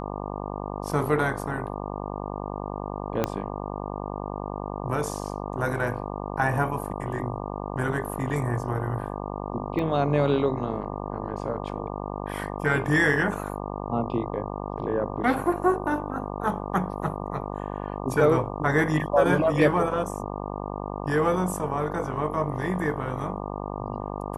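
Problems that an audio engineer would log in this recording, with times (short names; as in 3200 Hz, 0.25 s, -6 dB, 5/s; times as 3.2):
buzz 50 Hz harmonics 24 -33 dBFS
3.24 pop -10 dBFS
9.79 gap 2.4 ms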